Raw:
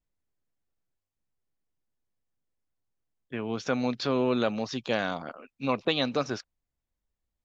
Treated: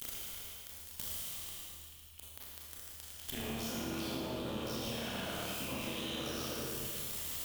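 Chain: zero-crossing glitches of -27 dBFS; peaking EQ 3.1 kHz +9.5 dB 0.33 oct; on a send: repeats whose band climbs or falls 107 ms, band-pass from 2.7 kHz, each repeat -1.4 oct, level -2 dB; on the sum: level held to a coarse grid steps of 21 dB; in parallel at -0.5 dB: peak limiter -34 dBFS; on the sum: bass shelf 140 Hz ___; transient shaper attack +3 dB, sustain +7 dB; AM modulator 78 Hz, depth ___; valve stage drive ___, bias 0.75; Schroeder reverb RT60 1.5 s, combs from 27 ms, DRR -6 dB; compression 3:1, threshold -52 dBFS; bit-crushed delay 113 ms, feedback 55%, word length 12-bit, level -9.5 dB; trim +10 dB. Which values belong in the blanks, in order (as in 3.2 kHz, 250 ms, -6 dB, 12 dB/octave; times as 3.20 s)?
+11 dB, 80%, 32 dB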